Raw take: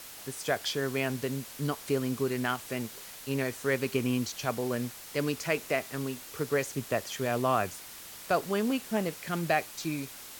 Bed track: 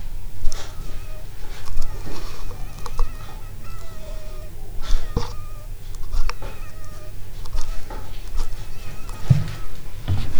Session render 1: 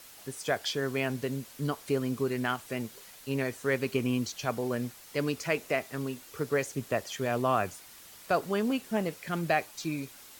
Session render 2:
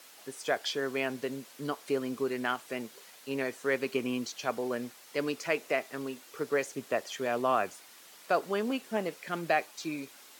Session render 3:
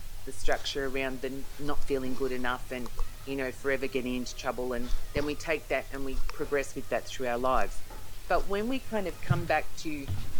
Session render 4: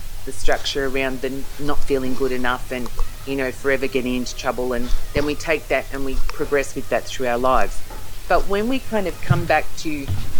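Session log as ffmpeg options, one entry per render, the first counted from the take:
ffmpeg -i in.wav -af "afftdn=noise_reduction=6:noise_floor=-46" out.wav
ffmpeg -i in.wav -af "highpass=270,highshelf=frequency=7800:gain=-6" out.wav
ffmpeg -i in.wav -i bed.wav -filter_complex "[1:a]volume=-12dB[link_01];[0:a][link_01]amix=inputs=2:normalize=0" out.wav
ffmpeg -i in.wav -af "volume=10dB,alimiter=limit=-3dB:level=0:latency=1" out.wav

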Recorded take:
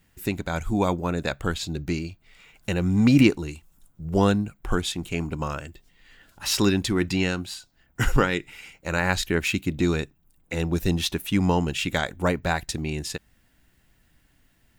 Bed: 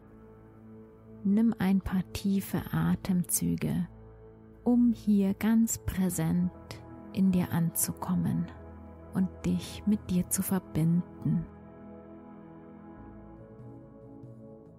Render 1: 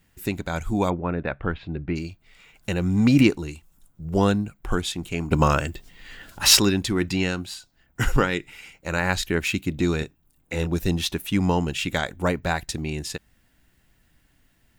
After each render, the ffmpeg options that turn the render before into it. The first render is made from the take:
ffmpeg -i in.wav -filter_complex "[0:a]asplit=3[link_01][link_02][link_03];[link_01]afade=type=out:start_time=0.89:duration=0.02[link_04];[link_02]lowpass=frequency=2500:width=0.5412,lowpass=frequency=2500:width=1.3066,afade=type=in:start_time=0.89:duration=0.02,afade=type=out:start_time=1.95:duration=0.02[link_05];[link_03]afade=type=in:start_time=1.95:duration=0.02[link_06];[link_04][link_05][link_06]amix=inputs=3:normalize=0,asettb=1/sr,asplit=3[link_07][link_08][link_09];[link_07]atrim=end=9.984[link_10];[link_08]atrim=start=9.98:end=10.67,asetpts=PTS-STARTPTS,afade=type=in:duration=0.004:curve=qsin,afade=type=out:start_time=0.686:duration=0.004:curve=qsin,asplit=2[link_11][link_12];[link_12]adelay=26,volume=-7dB[link_13];[link_11][link_13]amix=inputs=2:normalize=0,atrim=end_sample=30429[link_14];[link_09]atrim=start=10.666[link_15];[link_10][link_14]acrossfade=duration=0.004:curve1=hsin:curve2=qsin[link_16];[link_16][link_15]acrossfade=duration=0.004:curve1=qsin:curve2=hsin,asplit=3[link_17][link_18][link_19];[link_17]atrim=end=5.312[link_20];[link_18]atrim=start=5.308:end=6.592,asetpts=PTS-STARTPTS,volume=10.5dB[link_21];[link_19]atrim=start=6.588[link_22];[link_20][link_21]acrossfade=duration=0.004:curve1=hsin:curve2=hsin[link_23];[link_23][link_22]acrossfade=duration=0.004:curve1=hsin:curve2=hsin" out.wav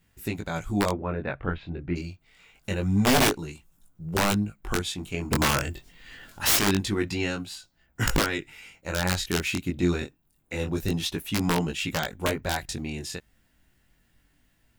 ffmpeg -i in.wav -af "aeval=exprs='(mod(3.76*val(0)+1,2)-1)/3.76':channel_layout=same,flanger=delay=18:depth=4.9:speed=0.26" out.wav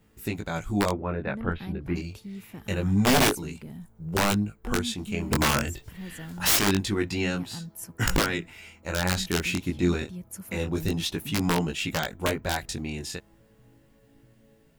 ffmpeg -i in.wav -i bed.wav -filter_complex "[1:a]volume=-11dB[link_01];[0:a][link_01]amix=inputs=2:normalize=0" out.wav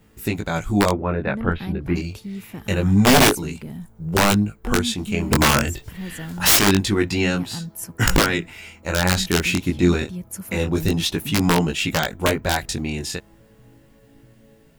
ffmpeg -i in.wav -af "volume=7dB" out.wav

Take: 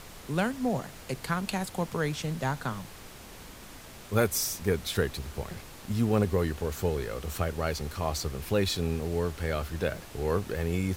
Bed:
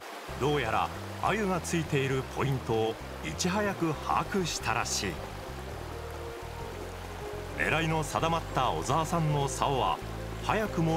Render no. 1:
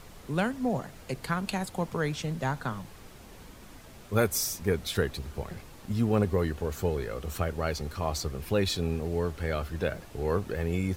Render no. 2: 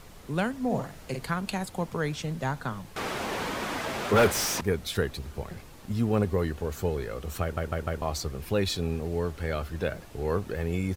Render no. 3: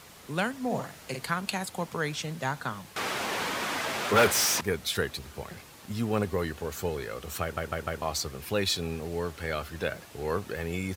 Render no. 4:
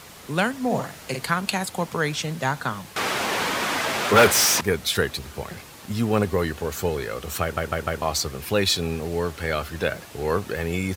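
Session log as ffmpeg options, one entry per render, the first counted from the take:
ffmpeg -i in.wav -af "afftdn=noise_reduction=6:noise_floor=-47" out.wav
ffmpeg -i in.wav -filter_complex "[0:a]asplit=3[link_01][link_02][link_03];[link_01]afade=type=out:start_time=0.7:duration=0.02[link_04];[link_02]asplit=2[link_05][link_06];[link_06]adelay=49,volume=-4.5dB[link_07];[link_05][link_07]amix=inputs=2:normalize=0,afade=type=in:start_time=0.7:duration=0.02,afade=type=out:start_time=1.28:duration=0.02[link_08];[link_03]afade=type=in:start_time=1.28:duration=0.02[link_09];[link_04][link_08][link_09]amix=inputs=3:normalize=0,asettb=1/sr,asplit=3[link_10][link_11][link_12];[link_10]atrim=end=2.964[link_13];[link_11]atrim=start=2.96:end=4.61,asetpts=PTS-STARTPTS,afade=type=in:duration=0.004:curve=qsin,afade=type=out:start_time=1.646:duration=0.004:curve=qsin,asplit=2[link_14][link_15];[link_15]highpass=frequency=720:poles=1,volume=32dB,asoftclip=type=tanh:threshold=-11.5dB[link_16];[link_14][link_16]amix=inputs=2:normalize=0,lowpass=frequency=1800:poles=1,volume=-6dB[link_17];[link_12]atrim=start=4.606[link_18];[link_13][link_17]acrossfade=duration=0.004:curve1=hsin:curve2=qsin[link_19];[link_19][link_18]acrossfade=duration=0.004:curve1=qsin:curve2=hsin,asplit=5[link_20][link_21][link_22][link_23][link_24];[link_20]atrim=end=7.572[link_25];[link_21]atrim=start=7.418:end=7.572[link_26];[link_22]atrim=start=7.418:end=7.572[link_27];[link_23]atrim=start=7.418:end=7.572[link_28];[link_24]atrim=start=8.018[link_29];[link_25][link_26]acrossfade=duration=0.004:curve1=hsin:curve2=hsin[link_30];[link_30][link_27]acrossfade=duration=0.004:curve1=hsin:curve2=hsin[link_31];[link_31][link_28]acrossfade=duration=0.004:curve1=hsin:curve2=hsin[link_32];[link_32][link_29]acrossfade=duration=0.004:curve1=hsin:curve2=hsin" out.wav
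ffmpeg -i in.wav -af "highpass=81,tiltshelf=frequency=800:gain=-4" out.wav
ffmpeg -i in.wav -af "volume=6.5dB" out.wav

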